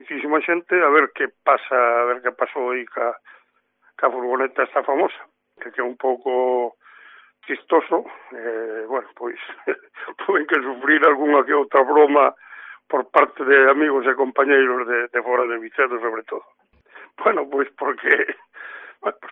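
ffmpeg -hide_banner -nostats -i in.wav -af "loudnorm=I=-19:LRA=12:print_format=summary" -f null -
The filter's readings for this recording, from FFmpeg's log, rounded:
Input Integrated:    -19.6 LUFS
Input True Peak:      -2.1 dBTP
Input LRA:             6.8 LU
Input Threshold:     -30.6 LUFS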